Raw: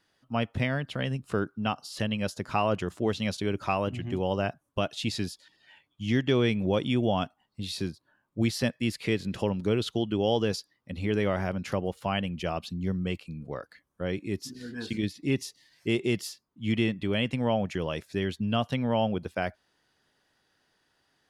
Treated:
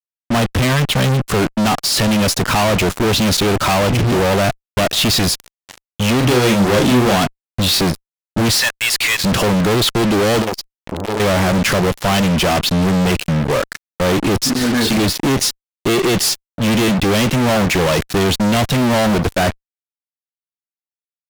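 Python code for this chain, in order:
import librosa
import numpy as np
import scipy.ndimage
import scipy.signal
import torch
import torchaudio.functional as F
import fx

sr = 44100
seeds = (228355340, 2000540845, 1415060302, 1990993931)

y = fx.highpass(x, sr, hz=990.0, slope=24, at=(8.6, 9.24))
y = fx.fuzz(y, sr, gain_db=51.0, gate_db=-48.0)
y = fx.doubler(y, sr, ms=40.0, db=-5.0, at=(6.2, 7.15), fade=0.02)
y = fx.transformer_sat(y, sr, knee_hz=600.0, at=(10.42, 11.2))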